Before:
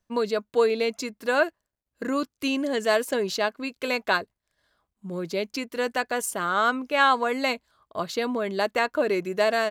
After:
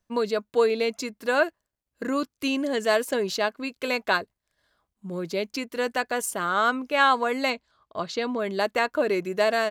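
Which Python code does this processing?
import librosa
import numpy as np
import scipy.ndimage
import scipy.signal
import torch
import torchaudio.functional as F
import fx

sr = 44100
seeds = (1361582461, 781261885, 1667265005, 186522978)

y = fx.cheby1_lowpass(x, sr, hz=5700.0, order=2, at=(7.5, 8.39))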